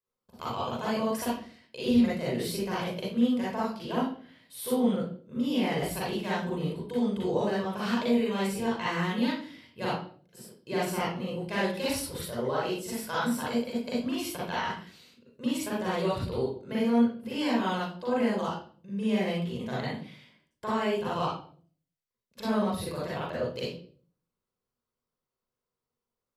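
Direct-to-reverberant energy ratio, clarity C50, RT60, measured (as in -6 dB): -7.0 dB, -1.5 dB, 0.45 s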